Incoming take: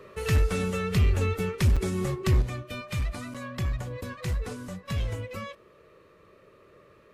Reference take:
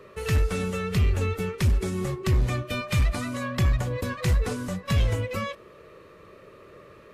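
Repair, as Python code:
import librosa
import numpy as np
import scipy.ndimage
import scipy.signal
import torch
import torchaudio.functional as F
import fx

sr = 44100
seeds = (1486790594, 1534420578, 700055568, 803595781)

y = fx.fix_interpolate(x, sr, at_s=(1.76, 3.34), length_ms=5.7)
y = fx.gain(y, sr, db=fx.steps((0.0, 0.0), (2.42, 7.0)))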